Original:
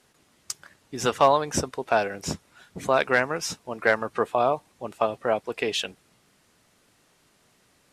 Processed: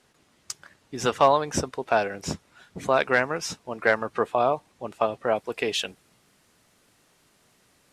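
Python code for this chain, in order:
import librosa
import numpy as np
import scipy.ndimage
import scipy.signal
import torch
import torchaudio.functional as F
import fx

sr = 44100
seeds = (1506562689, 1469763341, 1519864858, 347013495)

y = fx.high_shelf(x, sr, hz=10000.0, db=fx.steps((0.0, -7.5), (5.34, 2.5)))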